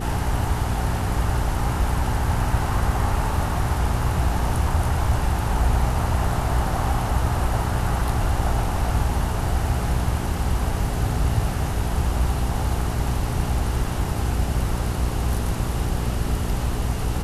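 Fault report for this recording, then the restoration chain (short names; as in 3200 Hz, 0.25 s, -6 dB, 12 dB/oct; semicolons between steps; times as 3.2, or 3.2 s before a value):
hum 60 Hz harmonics 7 -27 dBFS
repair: de-hum 60 Hz, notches 7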